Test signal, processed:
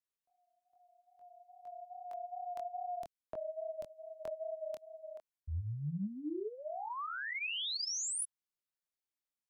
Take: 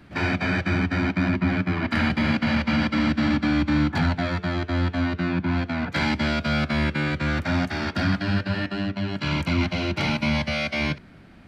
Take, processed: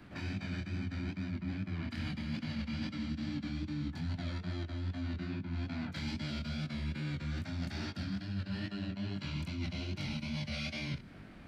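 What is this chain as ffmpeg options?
-filter_complex "[0:a]acrossover=split=270|3000[s0][s1][s2];[s1]acompressor=threshold=0.0112:ratio=5[s3];[s0][s3][s2]amix=inputs=3:normalize=0,flanger=delay=19.5:depth=6.5:speed=2.4,areverse,acompressor=threshold=0.0178:ratio=6,areverse"

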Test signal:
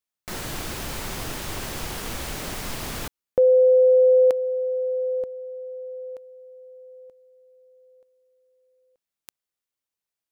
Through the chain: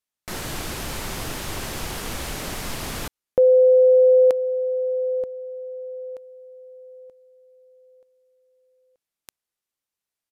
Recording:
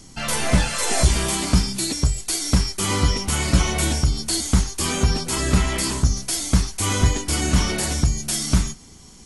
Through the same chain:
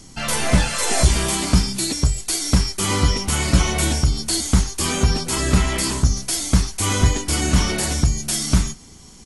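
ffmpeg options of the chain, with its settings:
-af "aresample=32000,aresample=44100,volume=1.19"

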